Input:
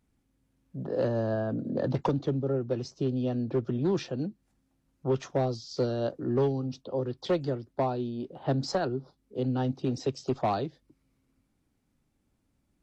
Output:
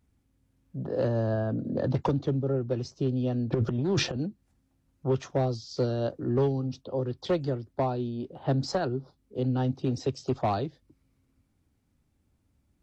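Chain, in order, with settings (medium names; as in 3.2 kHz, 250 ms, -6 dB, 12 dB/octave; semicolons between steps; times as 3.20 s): peaking EQ 80 Hz +9.5 dB 0.93 oct; 3.52–4.17 s: transient shaper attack -9 dB, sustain +12 dB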